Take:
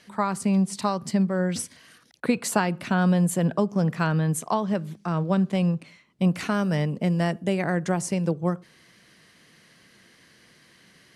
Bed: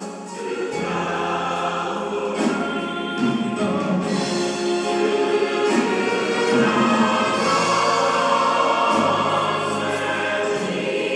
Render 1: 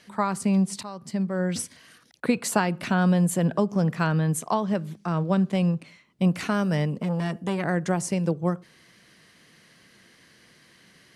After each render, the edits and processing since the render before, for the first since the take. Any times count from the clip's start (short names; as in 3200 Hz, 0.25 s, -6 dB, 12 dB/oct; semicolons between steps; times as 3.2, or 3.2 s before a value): 0.83–1.54 fade in, from -15.5 dB; 2.83–3.88 upward compressor, threshold -26 dBFS; 7–7.65 core saturation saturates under 630 Hz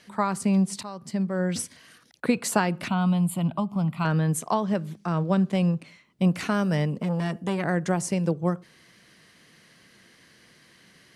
2.88–4.05 fixed phaser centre 1700 Hz, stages 6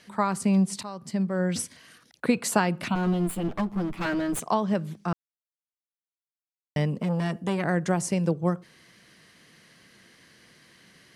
2.95–4.4 minimum comb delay 9.6 ms; 5.13–6.76 mute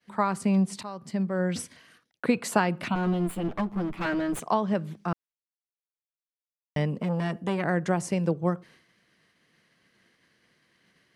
expander -48 dBFS; tone controls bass -2 dB, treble -6 dB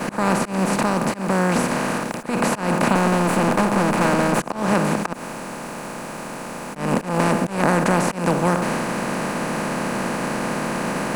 per-bin compression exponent 0.2; auto swell 0.173 s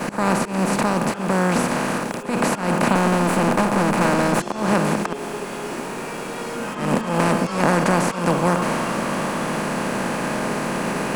add bed -12.5 dB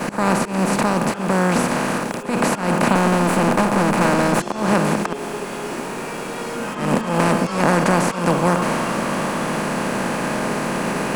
gain +1.5 dB; limiter -1 dBFS, peak gain reduction 1 dB